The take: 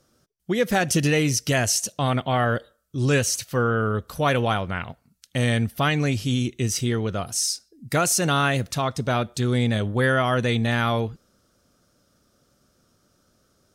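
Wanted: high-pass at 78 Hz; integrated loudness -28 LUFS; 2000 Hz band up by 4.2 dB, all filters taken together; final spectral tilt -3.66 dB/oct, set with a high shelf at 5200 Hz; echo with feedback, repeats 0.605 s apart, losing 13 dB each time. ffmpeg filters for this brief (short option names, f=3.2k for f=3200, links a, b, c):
-af "highpass=78,equalizer=f=2k:t=o:g=5,highshelf=f=5.2k:g=4,aecho=1:1:605|1210|1815:0.224|0.0493|0.0108,volume=-6.5dB"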